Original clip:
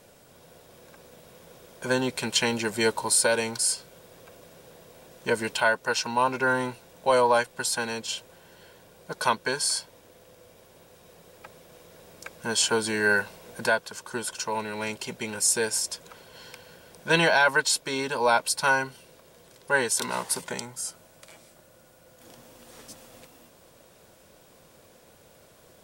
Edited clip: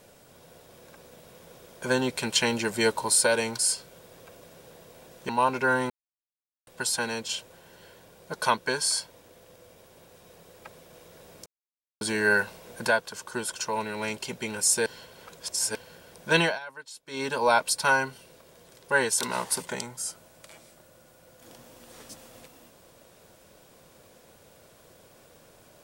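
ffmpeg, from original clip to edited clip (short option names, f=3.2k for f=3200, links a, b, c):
-filter_complex "[0:a]asplit=10[a][b][c][d][e][f][g][h][i][j];[a]atrim=end=5.292[k];[b]atrim=start=6.078:end=6.69,asetpts=PTS-STARTPTS,afade=t=out:st=0.608:d=0.004:c=hsin[l];[c]atrim=start=6.69:end=7.46,asetpts=PTS-STARTPTS,volume=0[m];[d]atrim=start=7.46:end=12.25,asetpts=PTS-STARTPTS,afade=t=in:d=0.004:c=hsin,afade=t=out:st=4.786:d=0.004:c=hsin[n];[e]atrim=start=12.25:end=12.8,asetpts=PTS-STARTPTS,volume=0[o];[f]atrim=start=12.8:end=15.652,asetpts=PTS-STARTPTS,afade=t=in:d=0.004:c=hsin[p];[g]atrim=start=15.648:end=16.542,asetpts=PTS-STARTPTS,areverse[q];[h]atrim=start=16.538:end=17.38,asetpts=PTS-STARTPTS,afade=t=out:st=0.642:d=0.2:silence=0.0944061[r];[i]atrim=start=17.38:end=17.85,asetpts=PTS-STARTPTS,volume=-20.5dB[s];[j]atrim=start=17.85,asetpts=PTS-STARTPTS,afade=t=in:d=0.2:silence=0.0944061[t];[l][m][n][o][p]concat=n=5:v=0:a=1[u];[k][u]acrossfade=d=0.004:c1=hsin:c2=hsin[v];[v][q]acrossfade=d=0.004:c1=hsin:c2=hsin[w];[r][s][t]concat=n=3:v=0:a=1[x];[w][x]acrossfade=d=0.004:c1=hsin:c2=hsin"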